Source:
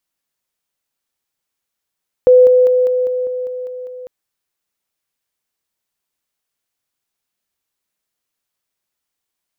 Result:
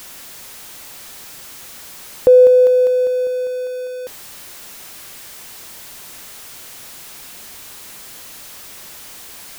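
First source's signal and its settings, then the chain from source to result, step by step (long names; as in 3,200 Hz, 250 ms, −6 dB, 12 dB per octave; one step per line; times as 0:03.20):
level staircase 503 Hz −4 dBFS, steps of −3 dB, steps 9, 0.20 s 0.00 s
converter with a step at zero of −30.5 dBFS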